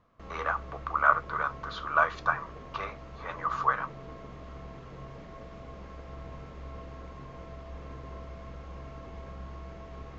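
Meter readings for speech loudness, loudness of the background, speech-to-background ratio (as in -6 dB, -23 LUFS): -29.5 LUFS, -45.0 LUFS, 15.5 dB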